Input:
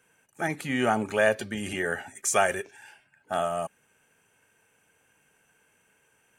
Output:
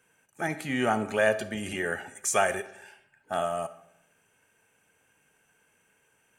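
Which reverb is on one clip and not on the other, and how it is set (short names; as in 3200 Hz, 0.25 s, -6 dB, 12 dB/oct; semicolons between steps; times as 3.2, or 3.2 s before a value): digital reverb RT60 0.81 s, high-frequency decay 0.6×, pre-delay 10 ms, DRR 13.5 dB; gain -1.5 dB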